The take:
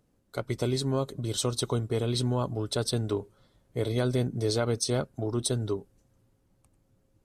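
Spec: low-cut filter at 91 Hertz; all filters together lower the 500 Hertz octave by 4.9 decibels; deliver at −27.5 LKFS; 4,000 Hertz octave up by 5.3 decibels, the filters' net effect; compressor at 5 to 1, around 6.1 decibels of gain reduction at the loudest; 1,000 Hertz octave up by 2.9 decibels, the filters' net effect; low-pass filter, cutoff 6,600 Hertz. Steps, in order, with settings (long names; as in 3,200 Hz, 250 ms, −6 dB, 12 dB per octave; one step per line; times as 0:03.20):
high-pass filter 91 Hz
low-pass filter 6,600 Hz
parametric band 500 Hz −7.5 dB
parametric band 1,000 Hz +5.5 dB
parametric band 4,000 Hz +6.5 dB
downward compressor 5 to 1, threshold −30 dBFS
level +7.5 dB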